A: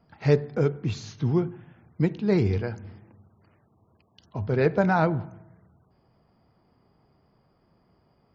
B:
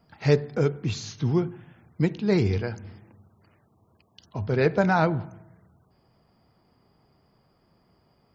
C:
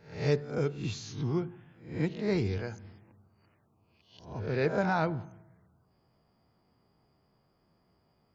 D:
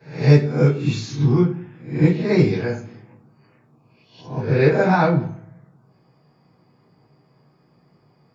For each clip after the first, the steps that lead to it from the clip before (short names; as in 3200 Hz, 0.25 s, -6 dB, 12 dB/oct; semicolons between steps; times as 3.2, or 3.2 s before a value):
high shelf 2900 Hz +7.5 dB
spectral swells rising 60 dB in 0.47 s; gain -8 dB
reverb RT60 0.40 s, pre-delay 3 ms, DRR -12.5 dB; gain -4 dB